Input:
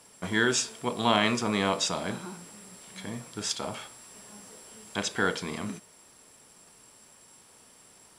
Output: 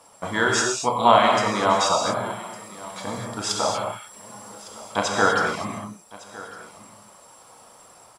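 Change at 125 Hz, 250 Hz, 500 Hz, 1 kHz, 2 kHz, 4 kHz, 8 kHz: +3.0, +2.0, +9.0, +12.0, +6.0, +4.0, +5.0 decibels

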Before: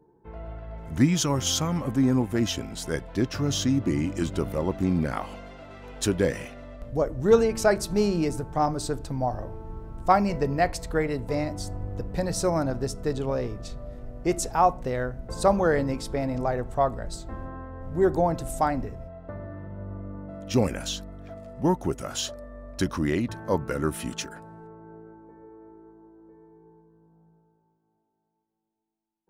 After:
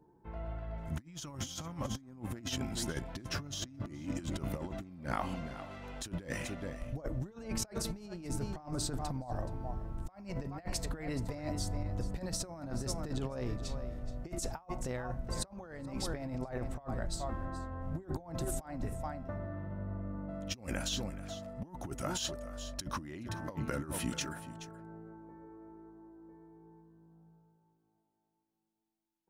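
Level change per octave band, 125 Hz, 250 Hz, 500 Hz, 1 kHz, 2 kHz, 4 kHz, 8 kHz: −9.0, −13.0, −16.5, −16.0, −10.5, −7.5, −7.5 decibels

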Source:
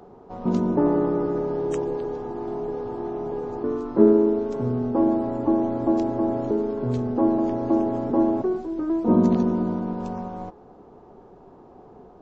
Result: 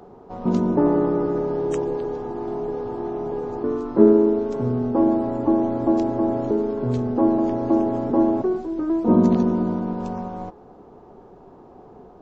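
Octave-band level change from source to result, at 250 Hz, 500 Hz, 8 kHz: +2.0 dB, +2.0 dB, can't be measured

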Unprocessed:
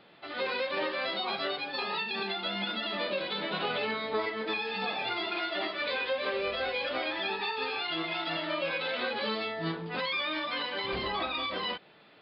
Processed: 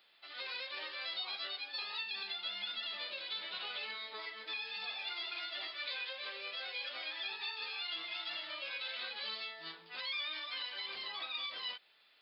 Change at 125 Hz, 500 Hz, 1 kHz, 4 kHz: below −30 dB, −20.5 dB, −14.5 dB, −4.0 dB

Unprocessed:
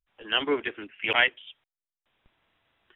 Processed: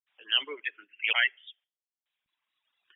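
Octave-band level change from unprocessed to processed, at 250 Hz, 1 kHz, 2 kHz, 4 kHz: below −20 dB, −9.5 dB, −2.5 dB, can't be measured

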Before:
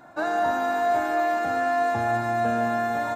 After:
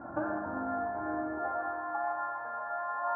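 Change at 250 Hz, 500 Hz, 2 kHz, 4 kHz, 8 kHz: −7.5 dB, −12.5 dB, −11.0 dB, below −40 dB, can't be measured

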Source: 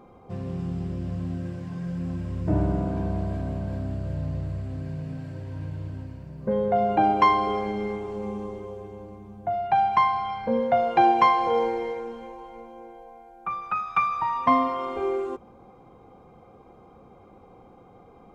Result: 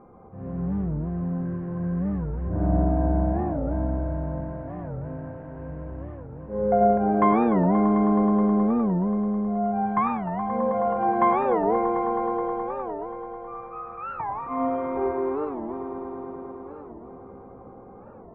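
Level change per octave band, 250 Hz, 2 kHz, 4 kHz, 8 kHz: +7.0 dB, −5.5 dB, below −20 dB, can't be measured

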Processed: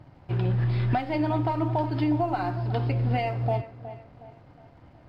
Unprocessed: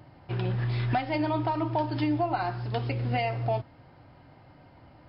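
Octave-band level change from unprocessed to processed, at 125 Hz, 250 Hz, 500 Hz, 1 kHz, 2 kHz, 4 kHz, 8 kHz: +4.0 dB, +2.5 dB, +1.5 dB, +0.5 dB, −1.5 dB, −2.5 dB, can't be measured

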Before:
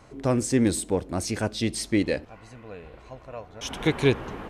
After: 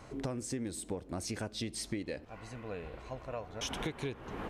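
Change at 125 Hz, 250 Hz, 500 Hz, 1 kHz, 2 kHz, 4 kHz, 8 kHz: −12.5, −14.0, −13.0, −9.0, −12.0, −8.5, −9.5 decibels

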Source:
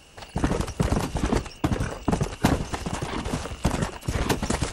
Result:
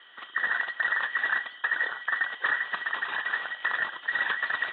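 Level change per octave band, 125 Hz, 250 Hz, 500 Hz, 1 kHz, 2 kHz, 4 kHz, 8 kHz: below −35 dB, below −25 dB, −16.5 dB, −3.5 dB, +11.5 dB, −2.5 dB, below −40 dB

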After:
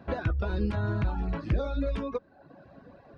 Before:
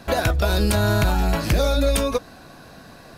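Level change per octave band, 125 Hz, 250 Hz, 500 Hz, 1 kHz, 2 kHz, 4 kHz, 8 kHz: −8.0 dB, −8.0 dB, −12.0 dB, −13.0 dB, −13.5 dB, −21.5 dB, below −35 dB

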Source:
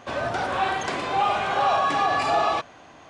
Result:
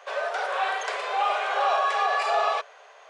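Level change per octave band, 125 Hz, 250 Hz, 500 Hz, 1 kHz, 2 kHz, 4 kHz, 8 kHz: below −40 dB, below −20 dB, −1.5 dB, −2.0 dB, 0.0 dB, −2.0 dB, −2.5 dB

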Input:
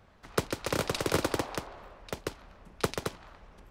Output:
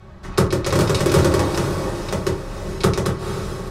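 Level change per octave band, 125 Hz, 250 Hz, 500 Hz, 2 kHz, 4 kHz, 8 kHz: +19.0, +16.0, +13.5, +9.5, +9.5, +10.5 decibels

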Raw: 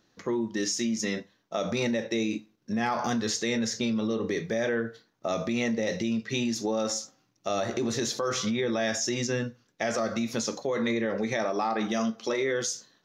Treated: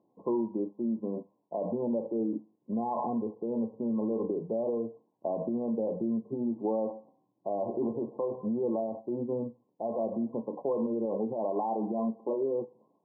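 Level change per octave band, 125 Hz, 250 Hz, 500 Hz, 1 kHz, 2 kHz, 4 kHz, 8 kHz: −7.0 dB, −2.5 dB, −1.5 dB, −3.5 dB, below −40 dB, below −40 dB, below −40 dB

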